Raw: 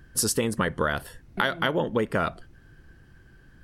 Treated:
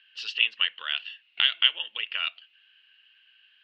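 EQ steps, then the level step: resonant high-pass 2800 Hz, resonance Q 13; steep low-pass 4000 Hz 36 dB/oct; 0.0 dB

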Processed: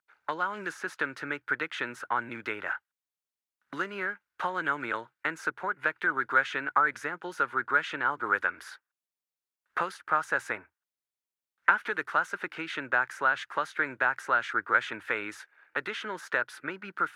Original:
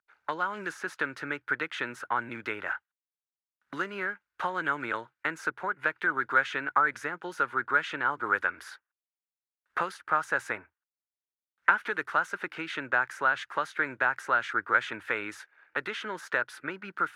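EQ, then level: low shelf 64 Hz -7 dB; 0.0 dB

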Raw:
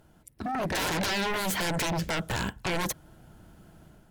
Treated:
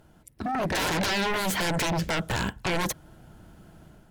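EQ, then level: high shelf 8700 Hz -3.5 dB; +2.5 dB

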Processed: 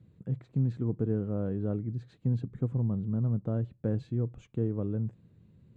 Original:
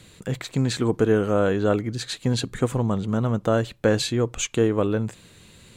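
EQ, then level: band-pass 130 Hz, Q 1.2; -3.0 dB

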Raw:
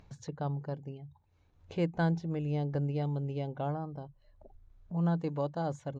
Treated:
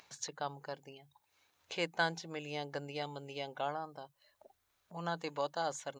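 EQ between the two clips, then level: HPF 1300 Hz 6 dB/oct; tilt +2 dB/oct; +7.0 dB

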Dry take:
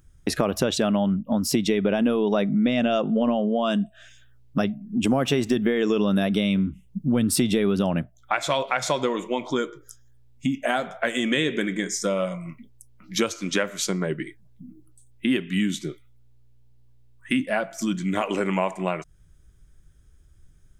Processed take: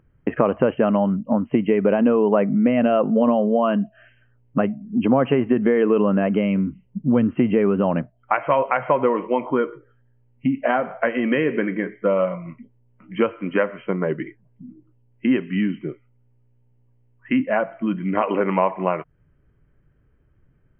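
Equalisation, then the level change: graphic EQ 125/250/500/1000/2000 Hz +9/+9/+12/+9/+7 dB; dynamic EQ 1100 Hz, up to +4 dB, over -25 dBFS, Q 1.4; brick-wall FIR low-pass 3200 Hz; -9.5 dB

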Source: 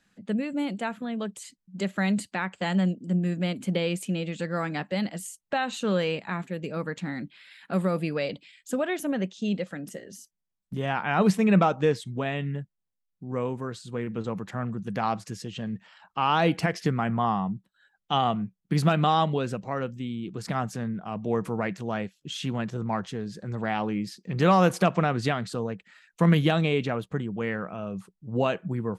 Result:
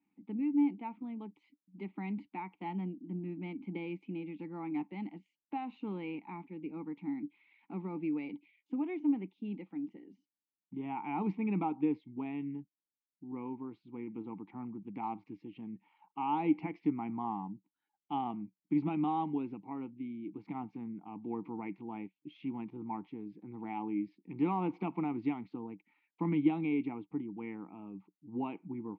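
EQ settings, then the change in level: vowel filter u; air absorption 260 m; high shelf 6300 Hz -9 dB; +3.0 dB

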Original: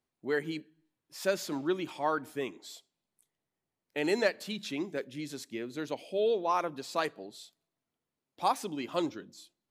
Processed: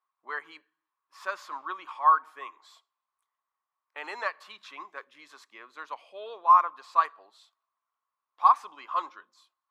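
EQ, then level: resonant high-pass 1100 Hz, resonance Q 10; LPF 1700 Hz 6 dB/oct; -1.0 dB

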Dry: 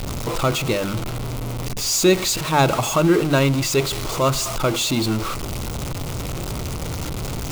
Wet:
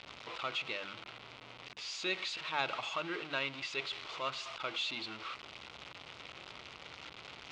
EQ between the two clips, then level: LPF 3200 Hz 24 dB/oct; differentiator; bell 68 Hz +6.5 dB 0.32 oct; 0.0 dB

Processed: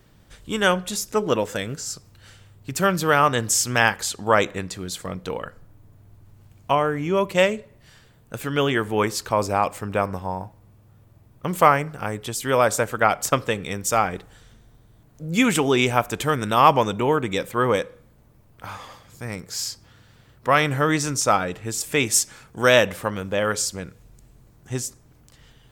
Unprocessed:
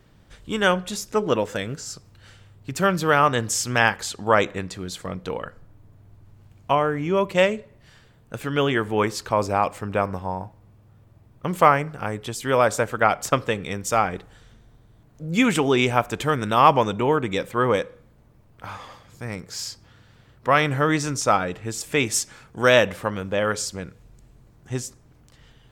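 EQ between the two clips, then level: high shelf 7300 Hz +9 dB; 0.0 dB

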